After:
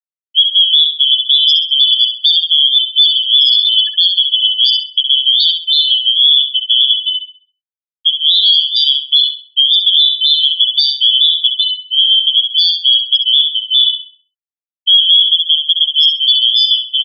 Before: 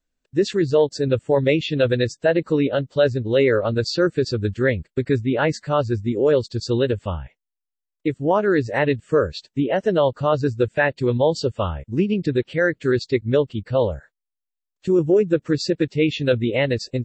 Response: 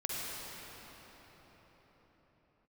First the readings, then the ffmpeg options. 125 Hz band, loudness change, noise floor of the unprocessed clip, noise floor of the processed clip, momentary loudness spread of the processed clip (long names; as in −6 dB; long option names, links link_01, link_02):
below −40 dB, +12.0 dB, −84 dBFS, below −85 dBFS, 4 LU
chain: -filter_complex "[0:a]afftfilt=real='real(if(lt(b,272),68*(eq(floor(b/68),0)*2+eq(floor(b/68),1)*3+eq(floor(b/68),2)*0+eq(floor(b/68),3)*1)+mod(b,68),b),0)':imag='imag(if(lt(b,272),68*(eq(floor(b/68),0)*2+eq(floor(b/68),1)*3+eq(floor(b/68),2)*0+eq(floor(b/68),3)*1)+mod(b,68),b),0)':win_size=2048:overlap=0.75,acrossover=split=230|3000[link_01][link_02][link_03];[link_02]acompressor=threshold=-31dB:ratio=4[link_04];[link_01][link_04][link_03]amix=inputs=3:normalize=0,afftfilt=real='re*gte(hypot(re,im),0.282)':imag='im*gte(hypot(re,im),0.282)':win_size=1024:overlap=0.75,lowshelf=frequency=380:gain=-7,aresample=16000,aresample=44100,highshelf=frequency=5300:gain=7,asplit=2[link_05][link_06];[link_06]adelay=66,lowpass=frequency=2900:poles=1,volume=-4.5dB,asplit=2[link_07][link_08];[link_08]adelay=66,lowpass=frequency=2900:poles=1,volume=0.48,asplit=2[link_09][link_10];[link_10]adelay=66,lowpass=frequency=2900:poles=1,volume=0.48,asplit=2[link_11][link_12];[link_12]adelay=66,lowpass=frequency=2900:poles=1,volume=0.48,asplit=2[link_13][link_14];[link_14]adelay=66,lowpass=frequency=2900:poles=1,volume=0.48,asplit=2[link_15][link_16];[link_16]adelay=66,lowpass=frequency=2900:poles=1,volume=0.48[link_17];[link_07][link_09][link_11][link_13][link_15][link_17]amix=inputs=6:normalize=0[link_18];[link_05][link_18]amix=inputs=2:normalize=0,alimiter=level_in=11.5dB:limit=-1dB:release=50:level=0:latency=1,volume=-1dB"